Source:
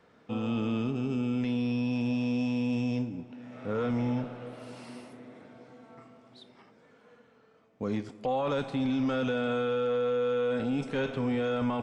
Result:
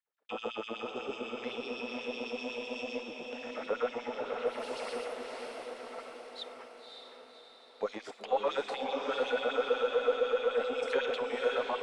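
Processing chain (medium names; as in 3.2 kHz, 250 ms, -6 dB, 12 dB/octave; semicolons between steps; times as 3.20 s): gate -55 dBFS, range -39 dB; in parallel at -2 dB: peak limiter -29 dBFS, peak gain reduction 7.5 dB; on the sum: compression, threshold -29 dBFS, peak gain reduction 6.5 dB; LFO high-pass sine 8 Hz 450–3900 Hz; Chebyshev shaper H 8 -42 dB, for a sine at -18.5 dBFS; on a send: echo that smears into a reverb 559 ms, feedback 56%, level -4.5 dB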